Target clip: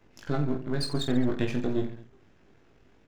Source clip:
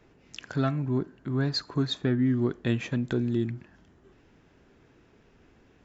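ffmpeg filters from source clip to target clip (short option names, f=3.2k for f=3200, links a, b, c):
-af "aeval=exprs='if(lt(val(0),0),0.251*val(0),val(0))':c=same,atempo=1.9,aecho=1:1:20|48|87.2|142.1|218.9:0.631|0.398|0.251|0.158|0.1"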